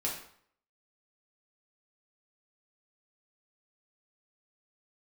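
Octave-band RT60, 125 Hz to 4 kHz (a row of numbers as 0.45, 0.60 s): 0.55, 0.60, 0.55, 0.60, 0.55, 0.50 s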